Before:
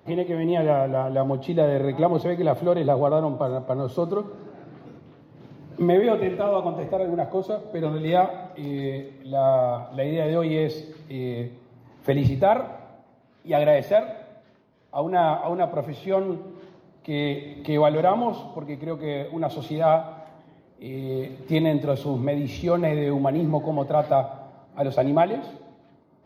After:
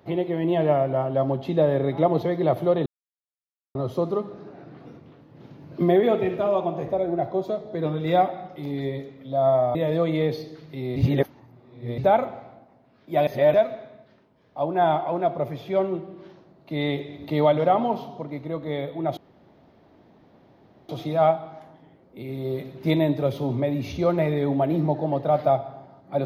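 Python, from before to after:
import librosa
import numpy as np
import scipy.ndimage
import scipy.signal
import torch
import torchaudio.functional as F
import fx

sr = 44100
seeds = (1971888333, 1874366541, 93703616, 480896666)

y = fx.edit(x, sr, fx.silence(start_s=2.86, length_s=0.89),
    fx.cut(start_s=9.75, length_s=0.37),
    fx.reverse_span(start_s=11.33, length_s=1.02),
    fx.reverse_span(start_s=13.64, length_s=0.27),
    fx.insert_room_tone(at_s=19.54, length_s=1.72), tone=tone)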